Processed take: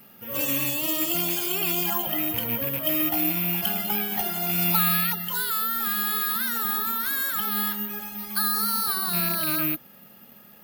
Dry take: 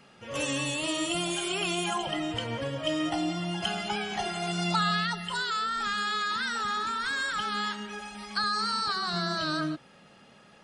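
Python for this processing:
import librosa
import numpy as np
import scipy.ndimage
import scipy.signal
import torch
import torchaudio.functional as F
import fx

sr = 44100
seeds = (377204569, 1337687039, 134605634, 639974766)

y = fx.rattle_buzz(x, sr, strikes_db=-36.0, level_db=-25.0)
y = fx.peak_eq(y, sr, hz=220.0, db=6.5, octaves=0.59)
y = (np.kron(y[::3], np.eye(3)[0]) * 3)[:len(y)]
y = F.gain(torch.from_numpy(y), -1.0).numpy()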